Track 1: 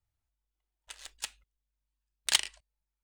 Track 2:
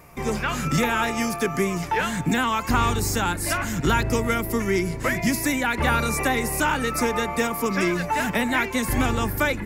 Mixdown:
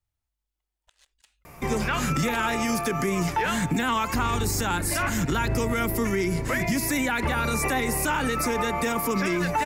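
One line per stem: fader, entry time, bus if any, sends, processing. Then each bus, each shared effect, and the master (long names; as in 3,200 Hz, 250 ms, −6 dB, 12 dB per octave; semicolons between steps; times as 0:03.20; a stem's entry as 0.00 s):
+0.5 dB, 0.00 s, no send, volume swells 352 ms
+2.5 dB, 1.45 s, no send, no processing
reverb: not used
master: brickwall limiter −16.5 dBFS, peak gain reduction 10 dB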